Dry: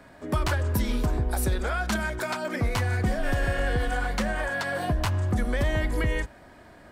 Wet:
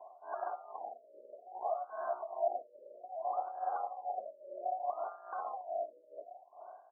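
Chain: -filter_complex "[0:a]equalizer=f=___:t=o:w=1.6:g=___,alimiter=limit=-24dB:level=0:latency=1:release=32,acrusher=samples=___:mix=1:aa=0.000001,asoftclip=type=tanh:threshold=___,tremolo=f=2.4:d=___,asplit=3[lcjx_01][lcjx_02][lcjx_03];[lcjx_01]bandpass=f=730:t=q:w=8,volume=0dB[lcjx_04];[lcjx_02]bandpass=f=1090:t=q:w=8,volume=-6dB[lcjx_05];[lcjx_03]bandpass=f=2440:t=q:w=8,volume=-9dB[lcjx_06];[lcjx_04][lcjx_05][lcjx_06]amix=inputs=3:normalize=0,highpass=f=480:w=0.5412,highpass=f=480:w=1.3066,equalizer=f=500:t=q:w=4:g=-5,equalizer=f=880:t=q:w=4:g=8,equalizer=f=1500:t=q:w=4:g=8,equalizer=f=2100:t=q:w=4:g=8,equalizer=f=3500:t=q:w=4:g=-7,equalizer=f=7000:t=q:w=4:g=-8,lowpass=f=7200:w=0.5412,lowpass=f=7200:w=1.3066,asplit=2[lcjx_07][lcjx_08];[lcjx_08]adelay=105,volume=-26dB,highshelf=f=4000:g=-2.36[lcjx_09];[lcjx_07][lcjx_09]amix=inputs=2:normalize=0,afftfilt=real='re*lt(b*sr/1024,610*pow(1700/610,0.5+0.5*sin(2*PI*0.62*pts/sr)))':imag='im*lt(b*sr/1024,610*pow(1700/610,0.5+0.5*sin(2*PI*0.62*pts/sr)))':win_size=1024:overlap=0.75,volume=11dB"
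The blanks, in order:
2300, -5.5, 34, -25dB, 0.81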